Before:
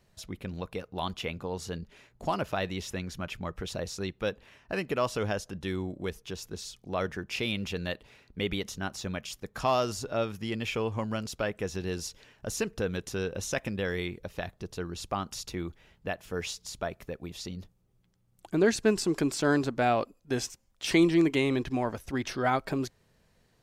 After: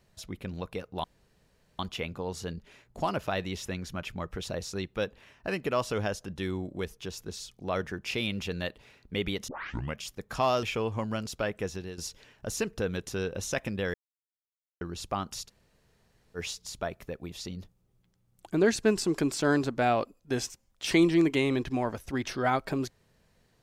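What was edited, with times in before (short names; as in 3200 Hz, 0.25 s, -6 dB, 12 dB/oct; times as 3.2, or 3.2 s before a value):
1.04 insert room tone 0.75 s
8.73 tape start 0.49 s
9.88–10.63 cut
11.65–11.98 fade out, to -12.5 dB
13.94–14.81 mute
15.47–16.37 room tone, crossfade 0.06 s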